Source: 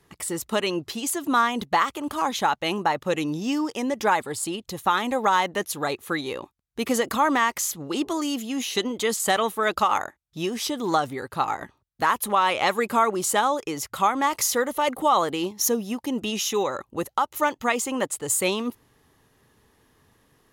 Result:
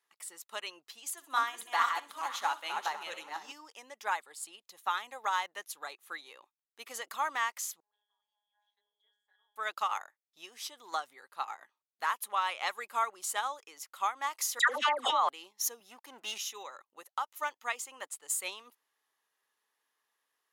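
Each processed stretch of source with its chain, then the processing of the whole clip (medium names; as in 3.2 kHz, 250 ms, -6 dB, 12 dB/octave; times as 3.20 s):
1.11–3.52 s: backward echo that repeats 251 ms, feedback 44%, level -3 dB + hum notches 60/120/180/240/300/360/420/480/540 Hz + thinning echo 64 ms, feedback 49%, high-pass 820 Hz, level -13 dB
7.80–9.56 s: high-pass 680 Hz 24 dB/octave + pitch-class resonator G#, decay 0.61 s + AM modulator 200 Hz, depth 55%
14.59–15.29 s: Bessel low-pass 3.5 kHz + phase dispersion lows, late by 108 ms, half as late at 1.4 kHz + level flattener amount 100%
15.80–16.38 s: waveshaping leveller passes 2 + three bands expanded up and down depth 70%
whole clip: high-pass 910 Hz 12 dB/octave; upward expansion 1.5:1, over -36 dBFS; trim -5.5 dB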